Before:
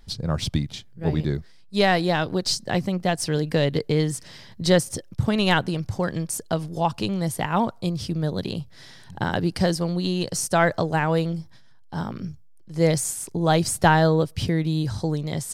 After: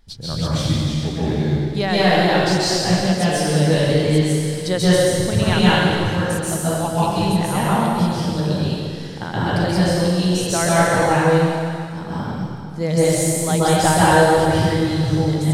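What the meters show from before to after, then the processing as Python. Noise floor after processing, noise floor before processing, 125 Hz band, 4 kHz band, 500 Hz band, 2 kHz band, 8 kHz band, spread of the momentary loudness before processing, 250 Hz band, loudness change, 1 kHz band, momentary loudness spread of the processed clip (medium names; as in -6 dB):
-29 dBFS, -47 dBFS, +6.5 dB, +6.0 dB, +6.0 dB, +5.5 dB, +6.0 dB, 11 LU, +6.0 dB, +6.0 dB, +6.0 dB, 10 LU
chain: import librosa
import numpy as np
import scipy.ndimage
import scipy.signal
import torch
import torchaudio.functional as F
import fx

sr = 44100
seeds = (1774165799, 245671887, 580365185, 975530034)

y = fx.rev_plate(x, sr, seeds[0], rt60_s=2.3, hf_ratio=0.95, predelay_ms=120, drr_db=-9.5)
y = y * librosa.db_to_amplitude(-4.0)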